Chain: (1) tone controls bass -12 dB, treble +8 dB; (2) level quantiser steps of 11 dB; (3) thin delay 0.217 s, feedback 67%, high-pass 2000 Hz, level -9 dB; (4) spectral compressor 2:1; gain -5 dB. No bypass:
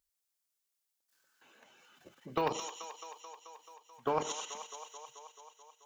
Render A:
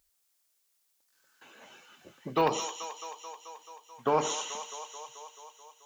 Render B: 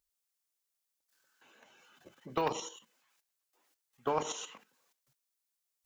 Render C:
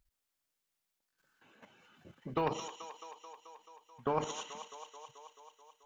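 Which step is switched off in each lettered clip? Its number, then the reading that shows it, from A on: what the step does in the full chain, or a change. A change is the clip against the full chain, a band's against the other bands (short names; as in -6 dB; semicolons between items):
2, loudness change +6.0 LU; 3, momentary loudness spread change -4 LU; 1, 125 Hz band +6.0 dB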